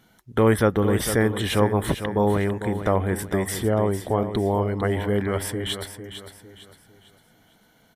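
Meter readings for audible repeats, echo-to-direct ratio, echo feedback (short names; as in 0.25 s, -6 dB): 3, -9.5 dB, 37%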